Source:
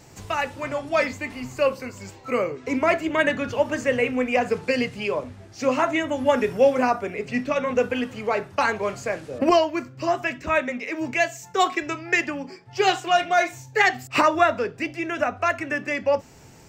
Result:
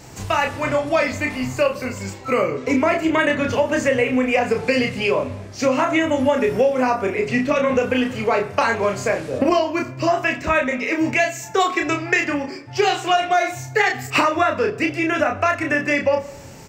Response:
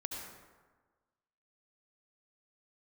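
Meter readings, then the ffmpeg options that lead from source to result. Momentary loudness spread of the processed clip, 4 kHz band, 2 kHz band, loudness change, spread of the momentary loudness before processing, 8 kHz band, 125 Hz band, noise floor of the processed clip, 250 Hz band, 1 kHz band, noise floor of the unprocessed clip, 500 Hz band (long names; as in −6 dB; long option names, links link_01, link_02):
5 LU, +3.5 dB, +4.0 dB, +3.5 dB, 9 LU, +5.0 dB, +8.0 dB, −37 dBFS, +5.5 dB, +2.5 dB, −47 dBFS, +3.5 dB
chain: -filter_complex "[0:a]asplit=2[link_01][link_02];[link_02]adelay=31,volume=-4dB[link_03];[link_01][link_03]amix=inputs=2:normalize=0,acompressor=threshold=-21dB:ratio=6,asplit=2[link_04][link_05];[1:a]atrim=start_sample=2205,asetrate=57330,aresample=44100[link_06];[link_05][link_06]afir=irnorm=-1:irlink=0,volume=-11.5dB[link_07];[link_04][link_07]amix=inputs=2:normalize=0,volume=5.5dB"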